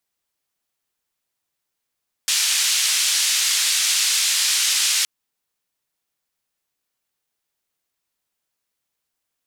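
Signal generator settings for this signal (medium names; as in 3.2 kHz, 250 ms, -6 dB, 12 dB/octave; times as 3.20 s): noise band 2.6–7.6 kHz, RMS -19.5 dBFS 2.77 s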